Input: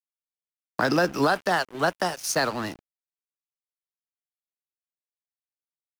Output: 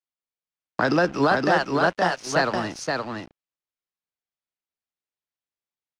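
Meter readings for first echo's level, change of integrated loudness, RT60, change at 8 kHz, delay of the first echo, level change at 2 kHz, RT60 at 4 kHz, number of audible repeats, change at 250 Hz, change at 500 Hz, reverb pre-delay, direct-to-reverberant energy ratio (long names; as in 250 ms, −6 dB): −3.5 dB, +2.0 dB, no reverb audible, −4.0 dB, 519 ms, +3.0 dB, no reverb audible, 1, +3.5 dB, +3.5 dB, no reverb audible, no reverb audible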